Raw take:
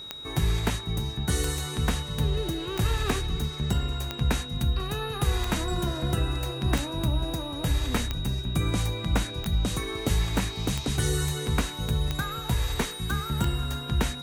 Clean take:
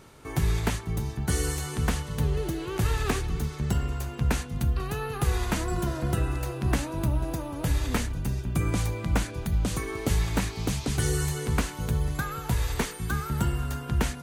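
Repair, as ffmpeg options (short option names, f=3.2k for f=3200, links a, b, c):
-af "adeclick=t=4,bandreject=f=3.8k:w=30"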